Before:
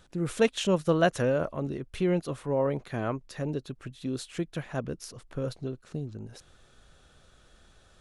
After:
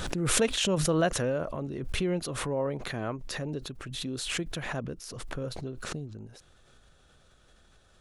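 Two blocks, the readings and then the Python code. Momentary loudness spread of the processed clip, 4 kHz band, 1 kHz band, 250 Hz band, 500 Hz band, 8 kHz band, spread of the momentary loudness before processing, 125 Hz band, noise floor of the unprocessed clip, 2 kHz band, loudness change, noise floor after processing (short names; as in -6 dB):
14 LU, +6.0 dB, -1.5 dB, -2.0 dB, -3.0 dB, +10.5 dB, 14 LU, -1.0 dB, -60 dBFS, +1.5 dB, -1.0 dB, -61 dBFS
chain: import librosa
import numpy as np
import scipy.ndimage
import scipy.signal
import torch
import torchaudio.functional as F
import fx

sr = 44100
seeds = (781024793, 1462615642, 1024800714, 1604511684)

y = fx.pre_swell(x, sr, db_per_s=31.0)
y = y * 10.0 ** (-3.5 / 20.0)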